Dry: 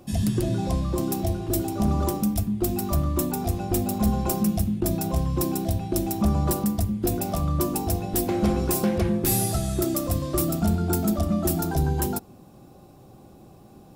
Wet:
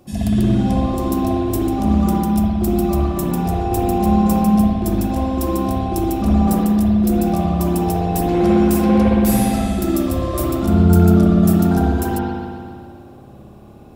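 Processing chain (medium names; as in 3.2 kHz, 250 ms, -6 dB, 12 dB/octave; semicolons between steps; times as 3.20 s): spring tank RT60 2.1 s, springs 57 ms, chirp 80 ms, DRR -7.5 dB; trim -1 dB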